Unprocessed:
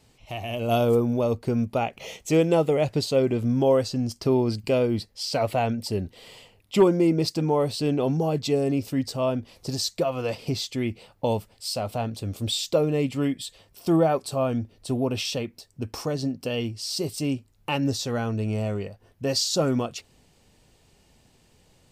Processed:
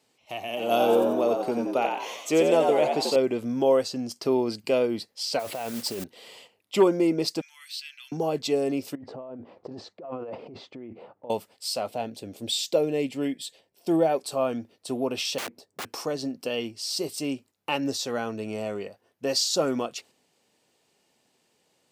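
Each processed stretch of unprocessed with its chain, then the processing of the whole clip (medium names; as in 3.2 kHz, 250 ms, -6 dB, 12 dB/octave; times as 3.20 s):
0.48–3.16 s: high-pass 150 Hz + frequency-shifting echo 89 ms, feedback 47%, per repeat +83 Hz, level -4.5 dB
5.39–6.04 s: compressor with a negative ratio -29 dBFS + modulation noise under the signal 14 dB
7.41–8.12 s: steep high-pass 1.8 kHz + dynamic bell 8.2 kHz, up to -7 dB, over -51 dBFS, Q 1.1
8.95–11.30 s: low-pass 1 kHz + compressor with a negative ratio -35 dBFS
11.89–14.25 s: peaking EQ 1.2 kHz -11 dB 0.46 oct + tape noise reduction on one side only decoder only
15.38–15.85 s: tilt shelf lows +8.5 dB, about 1.1 kHz + integer overflow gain 28 dB
whole clip: high-pass 280 Hz 12 dB/octave; gate -50 dBFS, range -6 dB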